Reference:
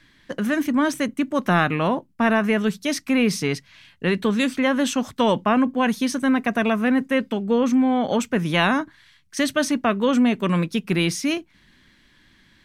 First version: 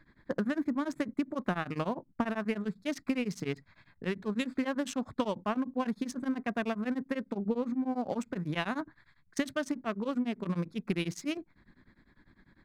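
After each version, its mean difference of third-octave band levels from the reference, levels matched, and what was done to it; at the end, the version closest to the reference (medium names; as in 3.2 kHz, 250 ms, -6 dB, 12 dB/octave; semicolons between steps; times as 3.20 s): 4.5 dB: local Wiener filter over 15 samples; compression 12:1, threshold -26 dBFS, peak gain reduction 13.5 dB; tremolo of two beating tones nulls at 10 Hz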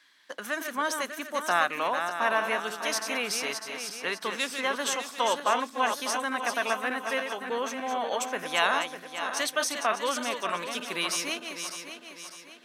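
11.0 dB: backward echo that repeats 300 ms, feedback 65%, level -6.5 dB; high-pass 860 Hz 12 dB/octave; peaking EQ 2.2 kHz -5.5 dB 1.3 oct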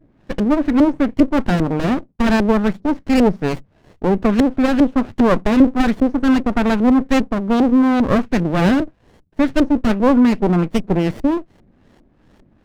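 6.5 dB: treble shelf 5.1 kHz +6 dB; LFO low-pass saw up 2.5 Hz 300–3400 Hz; sliding maximum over 33 samples; trim +5 dB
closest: first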